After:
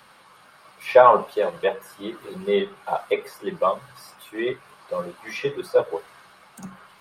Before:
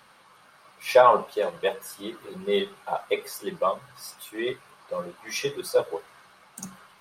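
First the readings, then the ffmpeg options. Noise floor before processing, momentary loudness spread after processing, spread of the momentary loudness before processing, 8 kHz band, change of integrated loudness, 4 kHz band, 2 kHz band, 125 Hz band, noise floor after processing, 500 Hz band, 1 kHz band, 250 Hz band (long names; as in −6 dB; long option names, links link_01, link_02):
−56 dBFS, 21 LU, 21 LU, can't be measured, +3.5 dB, −2.5 dB, +2.5 dB, +3.5 dB, −53 dBFS, +3.5 dB, +3.5 dB, +3.5 dB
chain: -filter_complex "[0:a]bandreject=frequency=6000:width=16,acrossover=split=510|3000[link_01][link_02][link_03];[link_03]acompressor=threshold=-51dB:ratio=6[link_04];[link_01][link_02][link_04]amix=inputs=3:normalize=0,volume=3.5dB"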